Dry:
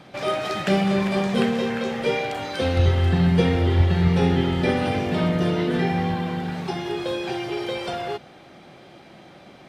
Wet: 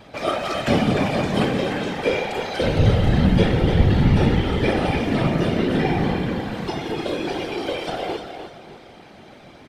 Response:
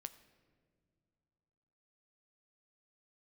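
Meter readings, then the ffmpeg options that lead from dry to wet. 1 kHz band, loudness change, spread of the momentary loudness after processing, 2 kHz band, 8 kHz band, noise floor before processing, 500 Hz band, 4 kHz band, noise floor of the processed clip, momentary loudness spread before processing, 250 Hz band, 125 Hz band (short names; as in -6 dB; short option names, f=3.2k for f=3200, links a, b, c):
+1.5 dB, +1.5 dB, 10 LU, +1.5 dB, n/a, -47 dBFS, +1.5 dB, +1.5 dB, -45 dBFS, 9 LU, +1.5 dB, +1.5 dB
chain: -af "aecho=1:1:300|600|900|1200:0.398|0.131|0.0434|0.0143,afftfilt=real='hypot(re,im)*cos(2*PI*random(0))':imag='hypot(re,im)*sin(2*PI*random(1))':win_size=512:overlap=0.75,volume=7dB"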